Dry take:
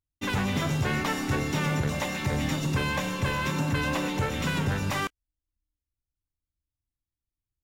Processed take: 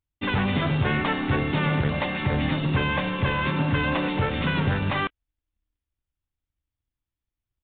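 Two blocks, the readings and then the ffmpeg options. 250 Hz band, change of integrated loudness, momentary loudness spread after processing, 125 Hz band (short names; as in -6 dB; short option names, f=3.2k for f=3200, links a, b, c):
+3.5 dB, +3.5 dB, 2 LU, +3.5 dB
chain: -af "acrusher=bits=3:mode=log:mix=0:aa=0.000001,aresample=8000,aresample=44100,volume=3.5dB"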